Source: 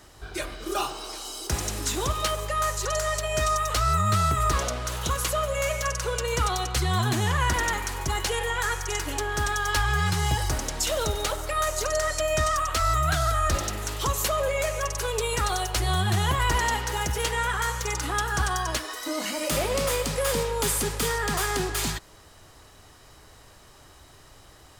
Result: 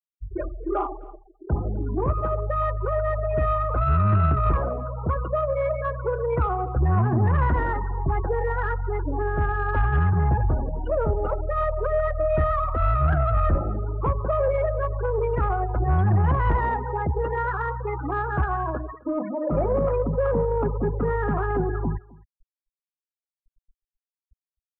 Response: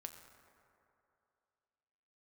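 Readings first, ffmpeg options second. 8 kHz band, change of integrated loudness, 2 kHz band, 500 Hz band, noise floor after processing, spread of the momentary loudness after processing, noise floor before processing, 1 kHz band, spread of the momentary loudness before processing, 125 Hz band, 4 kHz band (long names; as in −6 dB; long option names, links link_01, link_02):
below −40 dB, +1.5 dB, −5.5 dB, +4.0 dB, below −85 dBFS, 7 LU, −52 dBFS, +0.5 dB, 6 LU, +5.5 dB, below −25 dB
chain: -af "lowpass=1400,bandreject=frequency=60.81:width_type=h:width=4,bandreject=frequency=121.62:width_type=h:width=4,bandreject=frequency=182.43:width_type=h:width=4,bandreject=frequency=243.24:width_type=h:width=4,bandreject=frequency=304.05:width_type=h:width=4,bandreject=frequency=364.86:width_type=h:width=4,bandreject=frequency=425.67:width_type=h:width=4,afftfilt=real='re*gte(hypot(re,im),0.0447)':imag='im*gte(hypot(re,im),0.0447)':win_size=1024:overlap=0.75,tiltshelf=frequency=700:gain=3,acontrast=52,asoftclip=type=tanh:threshold=-10.5dB,aecho=1:1:260:0.0708,volume=-1.5dB"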